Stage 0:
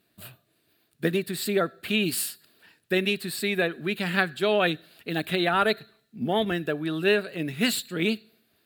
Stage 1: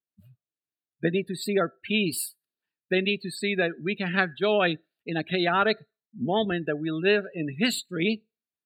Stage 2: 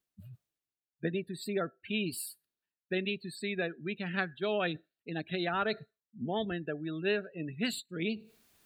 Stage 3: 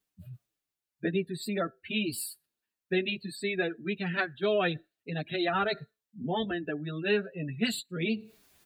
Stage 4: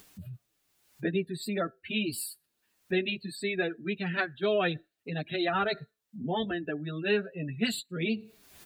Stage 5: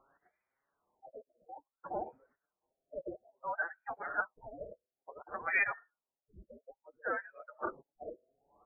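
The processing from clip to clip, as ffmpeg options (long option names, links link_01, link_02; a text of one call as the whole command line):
ffmpeg -i in.wav -af "afftdn=noise_reduction=33:noise_floor=-34" out.wav
ffmpeg -i in.wav -af "lowshelf=frequency=93:gain=8,areverse,acompressor=mode=upward:threshold=-30dB:ratio=2.5,areverse,volume=-9dB" out.wav
ffmpeg -i in.wav -filter_complex "[0:a]asplit=2[link_01][link_02];[link_02]adelay=7.1,afreqshift=-1.8[link_03];[link_01][link_03]amix=inputs=2:normalize=1,volume=6.5dB" out.wav
ffmpeg -i in.wav -af "acompressor=mode=upward:threshold=-37dB:ratio=2.5" out.wav
ffmpeg -i in.wav -af "lowpass=frequency=2700:width_type=q:width=0.5098,lowpass=frequency=2700:width_type=q:width=0.6013,lowpass=frequency=2700:width_type=q:width=0.9,lowpass=frequency=2700:width_type=q:width=2.563,afreqshift=-3200,afftfilt=real='re*lt(b*sr/1024,660*pow(2500/660,0.5+0.5*sin(2*PI*0.58*pts/sr)))':imag='im*lt(b*sr/1024,660*pow(2500/660,0.5+0.5*sin(2*PI*0.58*pts/sr)))':win_size=1024:overlap=0.75" out.wav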